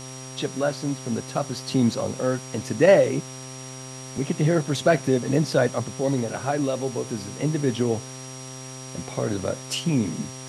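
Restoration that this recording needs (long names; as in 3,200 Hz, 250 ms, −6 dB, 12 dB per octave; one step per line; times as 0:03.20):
hum removal 130.7 Hz, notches 10
notch filter 5,700 Hz, Q 30
noise reduction from a noise print 30 dB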